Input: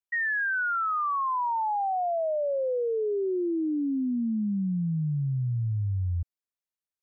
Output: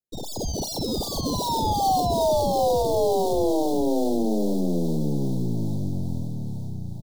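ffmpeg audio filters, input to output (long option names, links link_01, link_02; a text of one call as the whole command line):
ffmpeg -i in.wav -filter_complex "[0:a]highpass=120,acrossover=split=470[link_01][link_02];[link_02]dynaudnorm=framelen=230:gausssize=3:maxgain=4.5dB[link_03];[link_01][link_03]amix=inputs=2:normalize=0,aeval=exprs='0.106*(cos(1*acos(clip(val(0)/0.106,-1,1)))-cos(1*PI/2))+0.0299*(cos(2*acos(clip(val(0)/0.106,-1,1)))-cos(2*PI/2))+0.015*(cos(3*acos(clip(val(0)/0.106,-1,1)))-cos(3*PI/2))+0.0211*(cos(4*acos(clip(val(0)/0.106,-1,1)))-cos(4*PI/2))':channel_layout=same,asplit=2[link_04][link_05];[link_05]acrusher=samples=33:mix=1:aa=0.000001:lfo=1:lforange=52.8:lforate=2.5,volume=-4dB[link_06];[link_04][link_06]amix=inputs=2:normalize=0,asuperstop=centerf=1800:order=12:qfactor=0.66,aecho=1:1:710|1278|1732|2096|2387:0.631|0.398|0.251|0.158|0.1" out.wav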